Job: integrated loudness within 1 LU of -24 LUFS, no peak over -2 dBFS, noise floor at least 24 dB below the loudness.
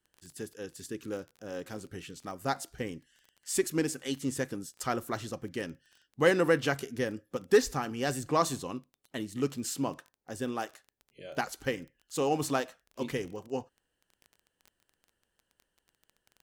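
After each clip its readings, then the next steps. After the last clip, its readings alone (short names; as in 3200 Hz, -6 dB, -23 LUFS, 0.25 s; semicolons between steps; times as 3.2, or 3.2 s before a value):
ticks 20/s; loudness -33.0 LUFS; peak -13.0 dBFS; loudness target -24.0 LUFS
-> de-click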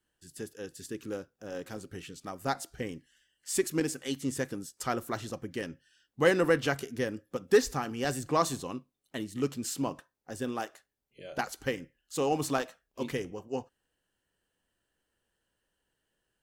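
ticks 0.18/s; loudness -33.0 LUFS; peak -12.0 dBFS; loudness target -24.0 LUFS
-> gain +9 dB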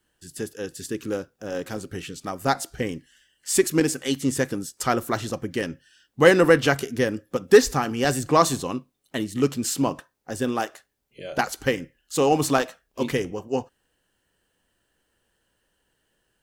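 loudness -24.0 LUFS; peak -3.0 dBFS; noise floor -73 dBFS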